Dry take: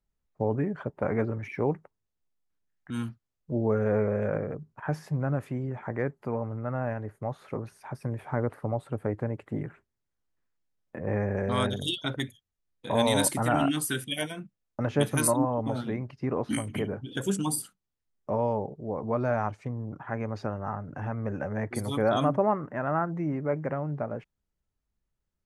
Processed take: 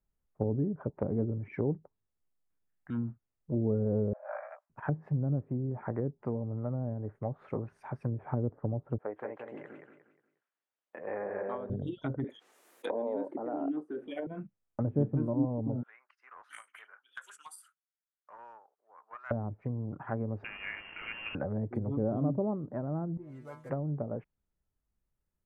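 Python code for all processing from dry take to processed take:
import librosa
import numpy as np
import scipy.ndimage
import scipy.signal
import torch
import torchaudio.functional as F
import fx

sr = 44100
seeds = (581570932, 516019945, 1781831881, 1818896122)

y = fx.chain(x, sr, fx.steep_highpass(hz=610.0, slope=96),
    fx.doubler(ms=17.0, db=-3.5), at=(4.13, 4.7))
y = fx.chain(y, sr, fx.bandpass_edges(low_hz=560.0, high_hz=6300.0),
    fx.peak_eq(hz=3100.0, db=5.5, octaves=0.63),
    fx.echo_feedback(ms=179, feedback_pct=33, wet_db=-5.0), at=(8.98, 11.7))
y = fx.chain(y, sr, fx.highpass(hz=350.0, slope=24),
    fx.env_flatten(amount_pct=50), at=(12.24, 14.27))
y = fx.chain(y, sr, fx.ladder_highpass(hz=1200.0, resonance_pct=55),
    fx.doppler_dist(depth_ms=0.11), at=(15.83, 19.31))
y = fx.chain(y, sr, fx.delta_mod(bps=32000, step_db=-35.5),
    fx.highpass(hz=170.0, slope=24),
    fx.freq_invert(carrier_hz=3000), at=(20.44, 21.35))
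y = fx.chain(y, sr, fx.block_float(bits=5),
    fx.stiff_resonator(f0_hz=120.0, decay_s=0.31, stiffness=0.002), at=(23.17, 23.7))
y = fx.peak_eq(y, sr, hz=4500.0, db=-10.5, octaves=1.6)
y = fx.env_lowpass_down(y, sr, base_hz=380.0, full_db=-27.0)
y = y * librosa.db_to_amplitude(-1.0)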